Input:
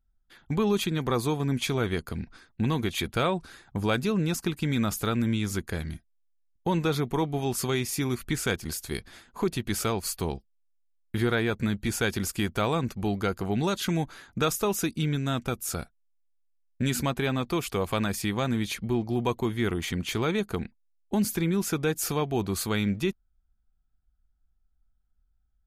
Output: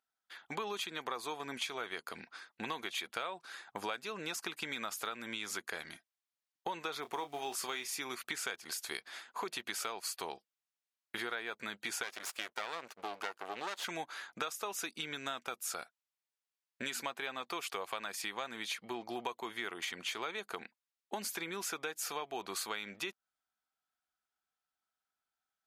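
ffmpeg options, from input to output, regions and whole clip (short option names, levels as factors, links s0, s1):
-filter_complex "[0:a]asettb=1/sr,asplit=3[s0][s1][s2];[s0]atrim=end=7.024[s3];[s1]atrim=start=7.02:end=7.92,asetpts=PTS-STARTPTS,afade=t=in:d=0.004:c=qsin,afade=t=out:st=0.896:d=0.004:c=qsin,acrusher=bits=8:mode=log:mix=0:aa=0.000001,asplit=2[s4][s5];[s5]adelay=27,volume=0.299[s6];[s4][s6]amix=inputs=2:normalize=0,atrim=end_sample=39690[s7];[s2]atrim=start=7.916[s8];[s3][s7]acrossfade=d=0.004:c1=hsin:c2=qsin[s9];[s9][s8]acrossfade=d=0.004:c1=qsin:c2=hsin,asettb=1/sr,asplit=3[s10][s11][s12];[s10]atrim=end=12.034[s13];[s11]atrim=start=12.03:end=13.85,asetpts=PTS-STARTPTS,afade=t=in:d=0.004:c=qsin,afade=t=out:st=1.816:d=0.004:c=qsin,bass=f=250:g=-7,treble=f=4000:g=-1,agate=range=0.0224:threshold=0.01:ratio=3:release=100:detection=peak,aeval=exprs='max(val(0),0)':c=same[s14];[s12]atrim=start=13.846[s15];[s13][s14]acrossfade=d=0.004:c1=hsin:c2=qsin[s16];[s16][s15]acrossfade=d=0.004:c1=qsin:c2=hsin,highpass=740,highshelf=f=8500:g=-9,acompressor=threshold=0.01:ratio=6,volume=1.58"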